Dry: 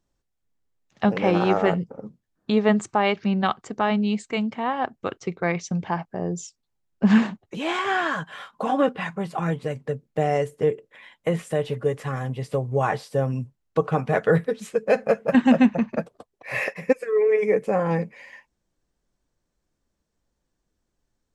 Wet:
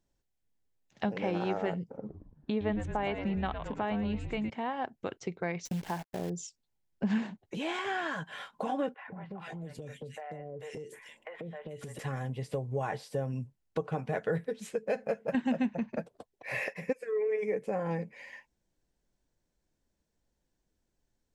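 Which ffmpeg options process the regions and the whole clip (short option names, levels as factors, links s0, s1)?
-filter_complex "[0:a]asettb=1/sr,asplit=3[s0][s1][s2];[s0]atrim=end=1.974[s3];[s1]atrim=start=1.97:end=4.5,asetpts=PTS-STARTPTS,afade=t=in:d=0.004:c=qsin,afade=t=out:st=2.526:d=0.004:c=qsin,bass=f=250:g=0,treble=f=4000:g=-12,asplit=7[s4][s5][s6][s7][s8][s9][s10];[s5]adelay=111,afreqshift=-120,volume=0.355[s11];[s6]adelay=222,afreqshift=-240,volume=0.195[s12];[s7]adelay=333,afreqshift=-360,volume=0.107[s13];[s8]adelay=444,afreqshift=-480,volume=0.0589[s14];[s9]adelay=555,afreqshift=-600,volume=0.0324[s15];[s10]adelay=666,afreqshift=-720,volume=0.0178[s16];[s4][s11][s12][s13][s14][s15][s16]amix=inputs=7:normalize=0,atrim=end_sample=111573[s17];[s2]atrim=start=4.496[s18];[s3][s17]acrossfade=d=0.004:c1=hsin:c2=qsin[s19];[s19][s18]acrossfade=d=0.004:c1=qsin:c2=hsin,asettb=1/sr,asplit=3[s20][s21][s22];[s20]atrim=end=5.654[s23];[s21]atrim=start=5.65:end=6.3,asetpts=PTS-STARTPTS,afade=t=in:d=0.004:c=qsin,afade=t=out:st=0.646:d=0.004:c=qsin,acrusher=bits=7:dc=4:mix=0:aa=0.000001,aeval=exprs='sgn(val(0))*max(abs(val(0))-0.00188,0)':c=same[s24];[s22]atrim=start=6.296[s25];[s23][s24]acrossfade=d=0.004:c1=hsin:c2=qsin[s26];[s26][s25]acrossfade=d=0.004:c1=qsin:c2=hsin,asettb=1/sr,asplit=3[s27][s28][s29];[s27]atrim=end=8.944[s30];[s28]atrim=start=8.94:end=11.99,asetpts=PTS-STARTPTS,afade=t=in:d=0.004:c=qsin,afade=t=out:st=3.046:d=0.004:c=qsin,acrossover=split=690|2400[s31][s32][s33];[s31]adelay=140[s34];[s33]adelay=440[s35];[s34][s32][s35]amix=inputs=3:normalize=0,atrim=end_sample=134505,acompressor=threshold=0.0178:ratio=12:attack=3.2:release=140:knee=1:detection=peak[s36];[s29]atrim=start=11.986[s37];[s30][s36]acrossfade=d=0.004:c1=hsin:c2=qsin[s38];[s38][s37]acrossfade=d=0.004:c1=qsin:c2=hsin,equalizer=f=1200:w=6.3:g=-8.5,acompressor=threshold=0.0251:ratio=2,volume=0.708"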